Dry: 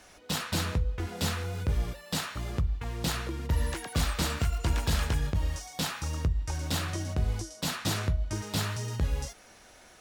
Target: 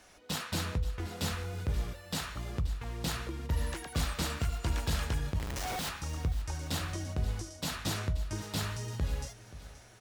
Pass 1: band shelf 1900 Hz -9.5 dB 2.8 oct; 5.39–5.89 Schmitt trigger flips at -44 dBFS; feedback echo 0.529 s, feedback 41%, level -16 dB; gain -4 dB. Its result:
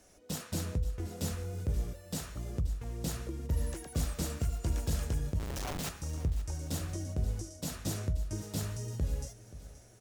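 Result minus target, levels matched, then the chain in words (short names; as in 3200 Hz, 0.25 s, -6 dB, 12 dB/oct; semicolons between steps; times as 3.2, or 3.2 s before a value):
2000 Hz band -7.5 dB
5.39–5.89 Schmitt trigger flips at -44 dBFS; feedback echo 0.529 s, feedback 41%, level -16 dB; gain -4 dB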